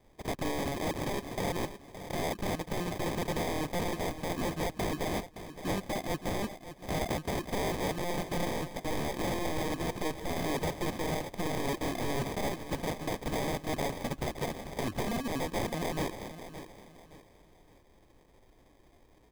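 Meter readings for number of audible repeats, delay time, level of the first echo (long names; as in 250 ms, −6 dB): 3, 568 ms, −12.0 dB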